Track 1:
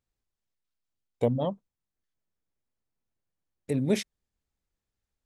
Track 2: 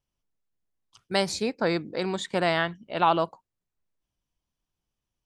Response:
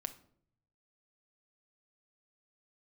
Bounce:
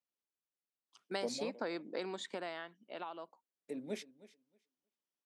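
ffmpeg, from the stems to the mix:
-filter_complex "[0:a]flanger=delay=1.3:depth=4.7:regen=-59:speed=1.8:shape=sinusoidal,volume=-9dB,asplit=2[link_01][link_02];[link_02]volume=-19dB[link_03];[1:a]acompressor=threshold=-32dB:ratio=6,volume=-3.5dB,afade=type=in:start_time=0.81:duration=0.33:silence=0.354813,afade=type=out:start_time=1.95:duration=0.79:silence=0.473151[link_04];[link_03]aecho=0:1:315|630|945:1|0.15|0.0225[link_05];[link_01][link_04][link_05]amix=inputs=3:normalize=0,highpass=frequency=230:width=0.5412,highpass=frequency=230:width=1.3066,highshelf=frequency=11000:gain=-8"

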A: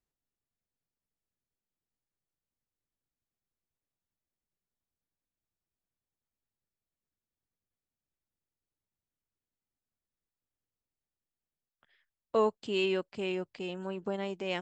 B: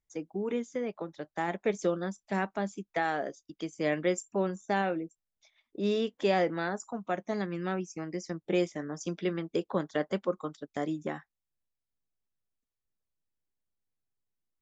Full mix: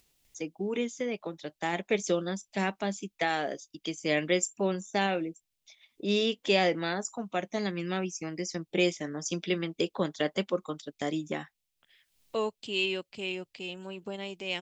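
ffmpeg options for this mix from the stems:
ffmpeg -i stem1.wav -i stem2.wav -filter_complex "[0:a]volume=-3.5dB[link_01];[1:a]adelay=250,volume=1dB[link_02];[link_01][link_02]amix=inputs=2:normalize=0,highshelf=frequency=2000:width_type=q:width=1.5:gain=7,acompressor=mode=upward:threshold=-53dB:ratio=2.5" out.wav

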